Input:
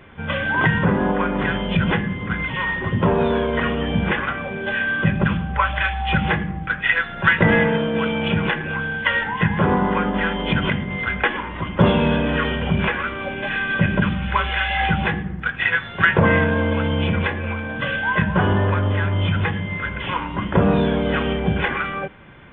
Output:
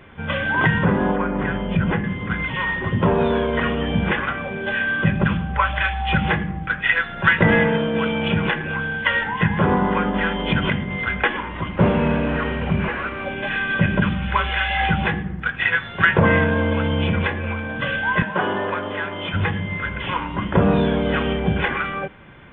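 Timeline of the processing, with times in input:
0:01.16–0:02.04: high-frequency loss of the air 440 metres
0:11.70–0:13.26: variable-slope delta modulation 16 kbit/s
0:18.22–0:19.34: high-pass filter 310 Hz

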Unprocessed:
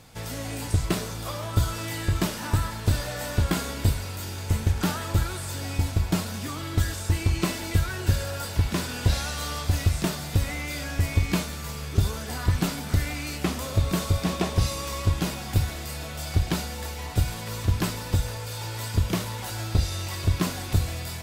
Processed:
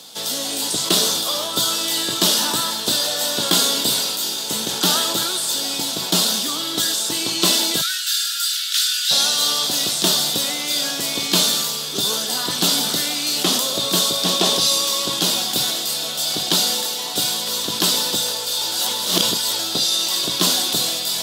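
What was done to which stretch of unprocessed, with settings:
0:07.81–0:09.11: Butterworth high-pass 1,300 Hz 96 dB per octave
0:18.72–0:19.59: reverse
whole clip: Bessel high-pass filter 290 Hz, order 8; high shelf with overshoot 2,800 Hz +7 dB, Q 3; level that may fall only so fast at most 27 dB per second; level +7 dB

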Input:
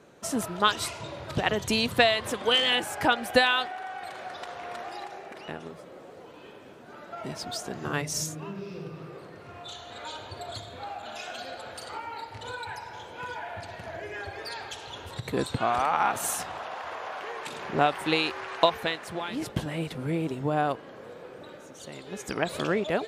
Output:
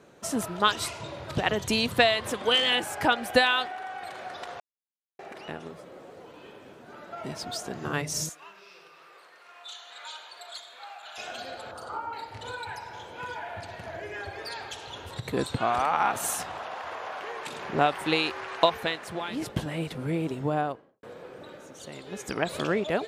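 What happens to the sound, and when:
0:04.60–0:05.19: silence
0:08.29–0:11.18: high-pass filter 1,100 Hz
0:11.71–0:12.13: high shelf with overshoot 1,600 Hz −7 dB, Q 3
0:20.46–0:21.03: fade out and dull

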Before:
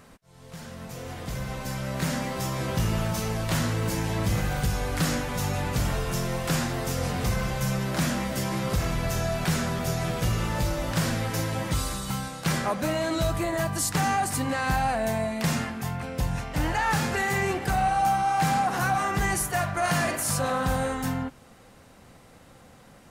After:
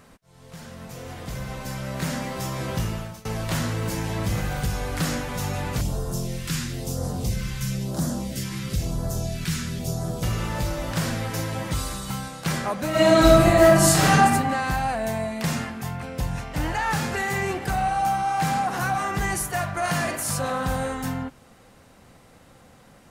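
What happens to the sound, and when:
0:02.77–0:03.25: fade out, to −23.5 dB
0:05.81–0:10.23: all-pass phaser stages 2, 1 Hz, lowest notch 620–2,300 Hz
0:12.90–0:14.16: thrown reverb, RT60 1.3 s, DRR −10 dB

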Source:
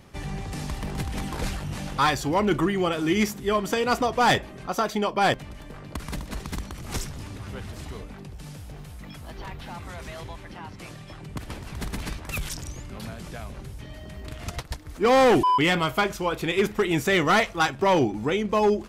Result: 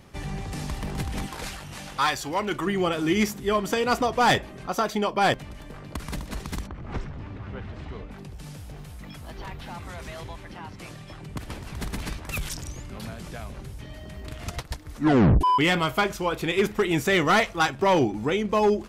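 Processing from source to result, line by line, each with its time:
0:01.26–0:02.67: low-shelf EQ 500 Hz −10 dB
0:06.66–0:08.10: low-pass filter 1,600 Hz → 3,200 Hz
0:14.93: tape stop 0.48 s

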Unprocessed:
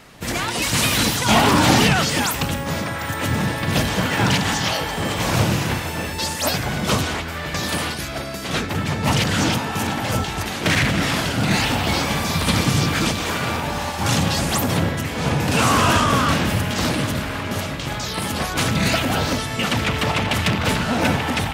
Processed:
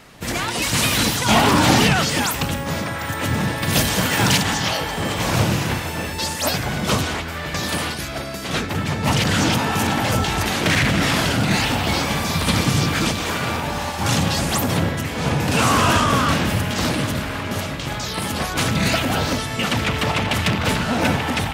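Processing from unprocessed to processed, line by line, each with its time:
0:03.62–0:04.43: high-shelf EQ 5,200 Hz +11 dB
0:09.25–0:11.43: envelope flattener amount 50%

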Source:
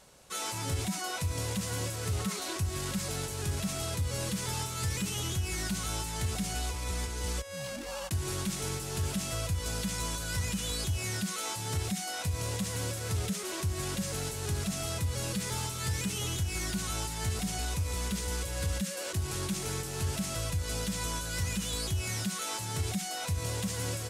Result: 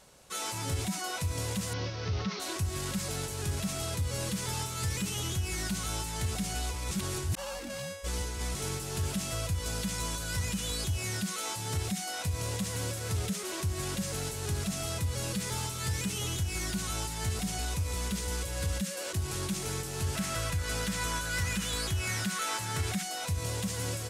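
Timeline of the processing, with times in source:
0:01.73–0:02.40: Butterworth low-pass 5,900 Hz 72 dB per octave
0:06.91–0:08.55: reverse
0:20.15–0:23.03: parametric band 1,600 Hz +7.5 dB 1.3 octaves

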